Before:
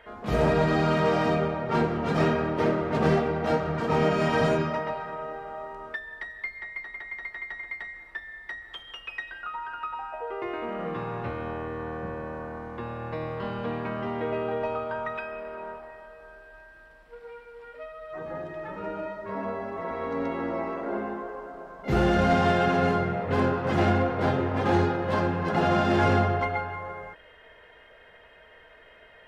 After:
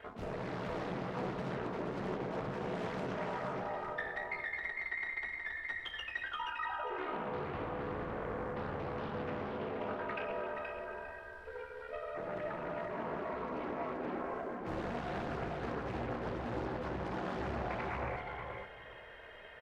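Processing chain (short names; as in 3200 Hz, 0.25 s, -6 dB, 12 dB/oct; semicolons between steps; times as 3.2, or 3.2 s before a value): reverse; compressor 16:1, threshold -35 dBFS, peak gain reduction 18 dB; reverse; ring modulator 25 Hz; feedback echo 0.601 s, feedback 29%, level -13 dB; time stretch by phase-locked vocoder 0.67×; on a send: echo 0.475 s -4 dB; on the sum: Doppler distortion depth 0.56 ms; gain +3 dB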